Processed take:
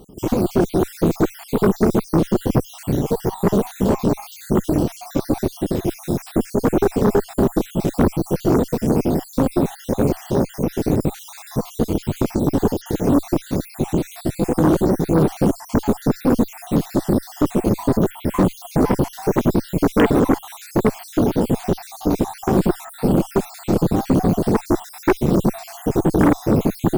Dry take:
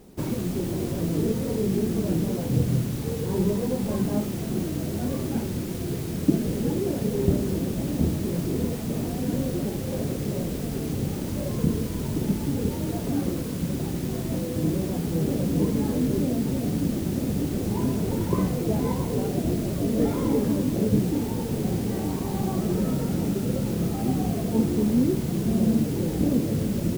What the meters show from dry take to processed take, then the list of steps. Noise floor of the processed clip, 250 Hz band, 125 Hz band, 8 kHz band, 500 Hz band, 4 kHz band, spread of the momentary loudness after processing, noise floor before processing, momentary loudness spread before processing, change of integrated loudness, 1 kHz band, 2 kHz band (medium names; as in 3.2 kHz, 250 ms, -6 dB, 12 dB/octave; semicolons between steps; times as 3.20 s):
-41 dBFS, +6.0 dB, +3.5 dB, +3.0 dB, +9.0 dB, +3.5 dB, 6 LU, -30 dBFS, 5 LU, +6.0 dB, +12.5 dB, +9.5 dB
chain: random holes in the spectrogram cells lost 59%; dynamic bell 370 Hz, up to +8 dB, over -41 dBFS, Q 0.85; Chebyshev shaper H 5 -12 dB, 6 -12 dB, 8 -8 dB, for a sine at -5.5 dBFS